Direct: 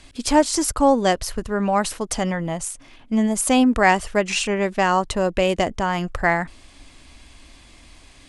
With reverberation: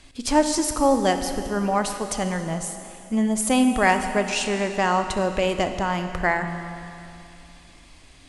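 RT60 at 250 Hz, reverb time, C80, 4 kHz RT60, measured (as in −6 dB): 2.7 s, 2.7 s, 8.0 dB, 2.6 s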